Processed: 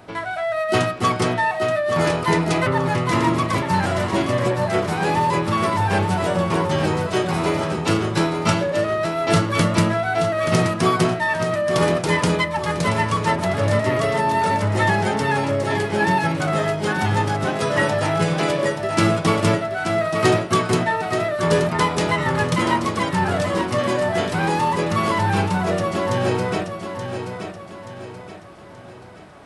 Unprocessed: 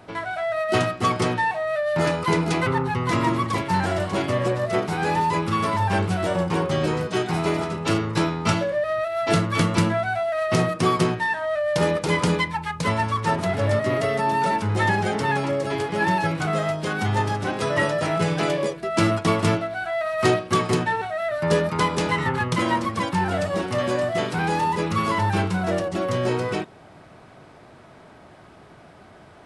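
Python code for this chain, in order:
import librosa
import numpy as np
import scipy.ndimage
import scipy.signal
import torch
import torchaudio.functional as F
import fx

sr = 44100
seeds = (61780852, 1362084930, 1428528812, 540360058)

p1 = fx.high_shelf(x, sr, hz=10000.0, db=4.0)
p2 = p1 + fx.echo_feedback(p1, sr, ms=878, feedback_pct=42, wet_db=-8, dry=0)
y = F.gain(torch.from_numpy(p2), 2.0).numpy()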